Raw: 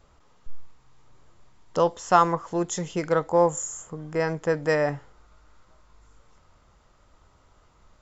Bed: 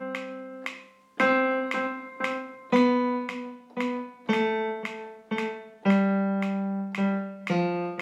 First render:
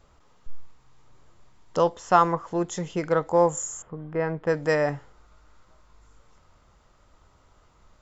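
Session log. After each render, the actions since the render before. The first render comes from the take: 1.89–3.27 s: treble shelf 6 kHz -9 dB; 3.82–4.47 s: distance through air 390 m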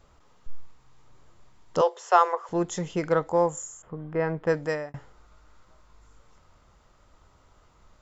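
1.81–2.49 s: Chebyshev high-pass 360 Hz, order 10; 3.10–3.83 s: fade out, to -10 dB; 4.51–4.94 s: fade out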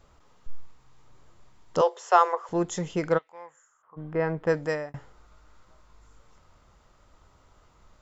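3.17–3.96 s: band-pass filter 3 kHz -> 980 Hz, Q 4.2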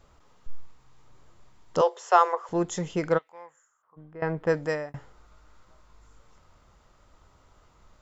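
3.24–4.22 s: fade out, to -17 dB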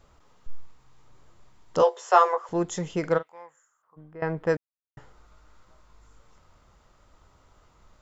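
1.78–2.38 s: doubling 16 ms -5 dB; 3.00–3.42 s: doubling 42 ms -14 dB; 4.57–4.97 s: mute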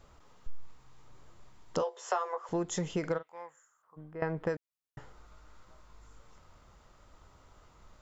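compression 20:1, threshold -28 dBFS, peak gain reduction 17.5 dB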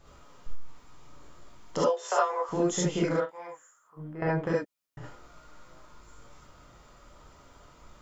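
gated-style reverb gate 90 ms rising, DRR -5 dB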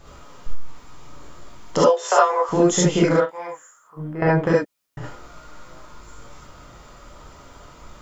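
trim +10 dB; peak limiter -3 dBFS, peak gain reduction 0.5 dB

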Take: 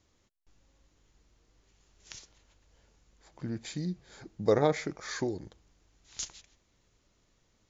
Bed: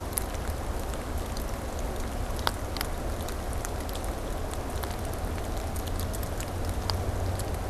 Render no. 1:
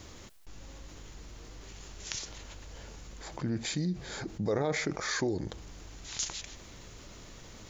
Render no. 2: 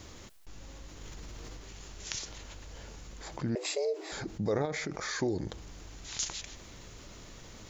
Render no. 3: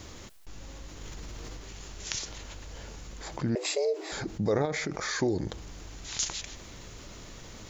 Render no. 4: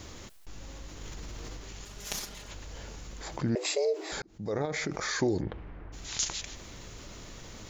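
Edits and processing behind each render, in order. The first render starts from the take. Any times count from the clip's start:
peak limiter -22 dBFS, peak gain reduction 9.5 dB; level flattener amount 50%
1.01–1.57 s: level flattener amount 100%; 3.55–4.12 s: frequency shift +270 Hz; 4.65–5.21 s: compression 2.5:1, threshold -33 dBFS
trim +3.5 dB
1.85–2.51 s: comb filter that takes the minimum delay 4.9 ms; 4.22–4.83 s: fade in; 5.40–5.92 s: low-pass 2.9 kHz -> 1.8 kHz 24 dB/octave

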